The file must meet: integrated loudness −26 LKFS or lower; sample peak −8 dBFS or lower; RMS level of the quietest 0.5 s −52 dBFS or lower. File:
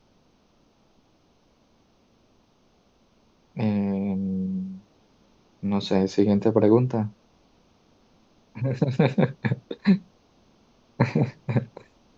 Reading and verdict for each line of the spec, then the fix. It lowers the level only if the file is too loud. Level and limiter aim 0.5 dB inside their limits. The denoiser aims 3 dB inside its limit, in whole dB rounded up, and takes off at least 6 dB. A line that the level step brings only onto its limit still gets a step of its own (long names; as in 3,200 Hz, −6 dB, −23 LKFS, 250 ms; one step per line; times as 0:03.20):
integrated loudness −24.5 LKFS: out of spec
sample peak −6.5 dBFS: out of spec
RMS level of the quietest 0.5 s −62 dBFS: in spec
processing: level −2 dB